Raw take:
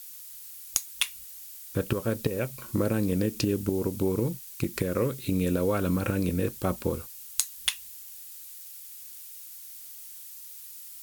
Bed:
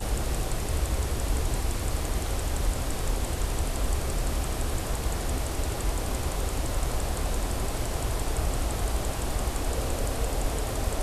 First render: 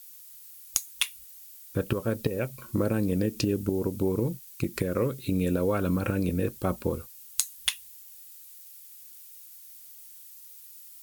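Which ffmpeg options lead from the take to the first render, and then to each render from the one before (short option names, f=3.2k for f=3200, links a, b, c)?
-af "afftdn=nr=6:nf=-45"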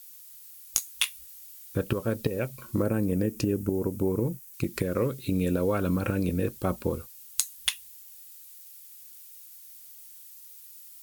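-filter_complex "[0:a]asettb=1/sr,asplit=3[a][b][c];[a]atrim=end=0.764[d];[b]atrim=start=0.76:end=1.78,asetpts=PTS-STARTPTS,afade=t=in:d=0.004:c=qsin,afade=t=out:st=1.016:d=0.004:c=qsin,asplit=2[e][f];[f]adelay=18,volume=-5.5dB[g];[e][g]amix=inputs=2:normalize=0,atrim=end_sample=44982[h];[c]atrim=start=1.776[i];[d][h]acrossfade=d=0.004:c1=hsin:c2=qsin[j];[j][i]acrossfade=d=0.004:c1=qsin:c2=hsin,asettb=1/sr,asplit=3[k][l][m];[k]atrim=end=2.824[n];[l]atrim=start=2.82:end=4.54,asetpts=PTS-STARTPTS,afade=t=in:d=0.004:c=qsin,afade=t=out:st=1.716:d=0.004:c=qsin,equalizer=f=3.9k:w=1.4:g=-9[o];[m]atrim=start=4.536[p];[n][o]acrossfade=d=0.004:c1=hsin:c2=qsin[q];[q][p]acrossfade=d=0.004:c1=qsin:c2=hsin"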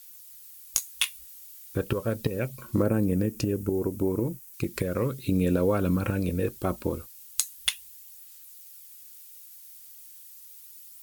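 -af "aphaser=in_gain=1:out_gain=1:delay=3.2:decay=0.24:speed=0.36:type=sinusoidal"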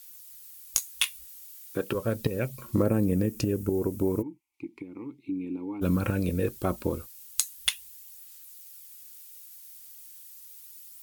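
-filter_complex "[0:a]asettb=1/sr,asplit=3[a][b][c];[a]atrim=end=1.454[d];[b]atrim=start=1.45:end=1.95,asetpts=PTS-STARTPTS,afade=t=in:d=0.004:c=qsin,afade=t=out:st=0.496:d=0.004:c=qsin,highpass=200[e];[c]atrim=start=1.946[f];[d][e]acrossfade=d=0.004:c1=hsin:c2=qsin[g];[g][f]acrossfade=d=0.004:c1=qsin:c2=hsin,asettb=1/sr,asplit=3[h][i][j];[h]atrim=end=2.464[k];[i]atrim=start=2.46:end=3.35,asetpts=PTS-STARTPTS,afade=t=in:d=0.004:c=qsin,afade=t=out:st=0.886:d=0.004:c=qsin,bandreject=f=1.5k:w=12[l];[j]atrim=start=3.346[m];[k][l]acrossfade=d=0.004:c1=hsin:c2=qsin[n];[n][m]acrossfade=d=0.004:c1=qsin:c2=hsin,asplit=3[o][p][q];[o]afade=t=out:st=4.21:d=0.02[r];[p]asplit=3[s][t][u];[s]bandpass=f=300:t=q:w=8,volume=0dB[v];[t]bandpass=f=870:t=q:w=8,volume=-6dB[w];[u]bandpass=f=2.24k:t=q:w=8,volume=-9dB[x];[v][w][x]amix=inputs=3:normalize=0,afade=t=in:st=4.21:d=0.02,afade=t=out:st=5.81:d=0.02[y];[q]afade=t=in:st=5.81:d=0.02[z];[r][y][z]amix=inputs=3:normalize=0"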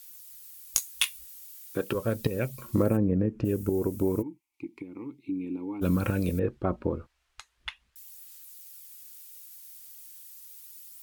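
-filter_complex "[0:a]asplit=3[a][b][c];[a]afade=t=out:st=2.96:d=0.02[d];[b]lowpass=1.5k,afade=t=in:st=2.96:d=0.02,afade=t=out:st=3.44:d=0.02[e];[c]afade=t=in:st=3.44:d=0.02[f];[d][e][f]amix=inputs=3:normalize=0,asettb=1/sr,asplit=3[g][h][i];[g]atrim=end=6.394[j];[h]atrim=start=6.39:end=7.96,asetpts=PTS-STARTPTS,afade=t=in:d=0.004:c=qsin,afade=t=out:st=1.566:d=0.004:c=qsin,lowpass=1.7k[k];[i]atrim=start=7.956[l];[j][k]acrossfade=d=0.004:c1=hsin:c2=qsin[m];[m][l]acrossfade=d=0.004:c1=qsin:c2=hsin"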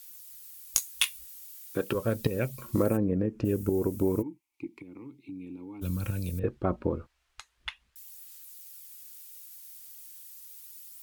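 -filter_complex "[0:a]asettb=1/sr,asplit=3[a][b][c];[a]atrim=end=2.754[d];[b]atrim=start=2.75:end=3.44,asetpts=PTS-STARTPTS,afade=t=in:d=0.004:c=qsin,afade=t=out:st=0.686:d=0.004:c=qsin,bass=f=250:g=-4,treble=f=4k:g=4[e];[c]atrim=start=3.436[f];[d][e]acrossfade=d=0.004:c1=hsin:c2=qsin[g];[g][f]acrossfade=d=0.004:c1=qsin:c2=hsin,asettb=1/sr,asplit=3[h][i][j];[h]atrim=end=4.674[k];[i]atrim=start=4.67:end=6.44,asetpts=PTS-STARTPTS,afade=t=in:d=0.004:c=qsin,afade=t=out:st=1.766:d=0.004:c=qsin,acrossover=split=140|3000[l][m][n];[m]acompressor=threshold=-45dB:ratio=2.5:attack=3.2:release=140:knee=2.83:detection=peak[o];[l][o][n]amix=inputs=3:normalize=0[p];[j]atrim=start=6.436[q];[k][p]acrossfade=d=0.004:c1=hsin:c2=qsin[r];[r][q]acrossfade=d=0.004:c1=qsin:c2=hsin"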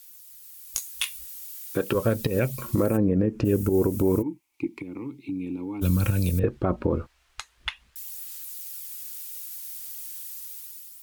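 -af "dynaudnorm=f=200:g=7:m=10dB,alimiter=limit=-12.5dB:level=0:latency=1:release=102"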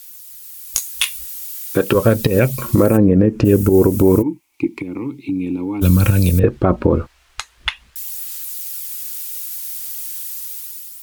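-af "volume=10dB"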